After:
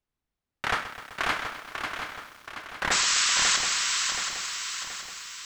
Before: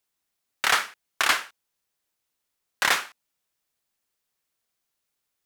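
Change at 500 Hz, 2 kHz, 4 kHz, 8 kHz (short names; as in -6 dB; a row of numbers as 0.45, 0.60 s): +0.5, -0.5, +4.5, +9.0 dB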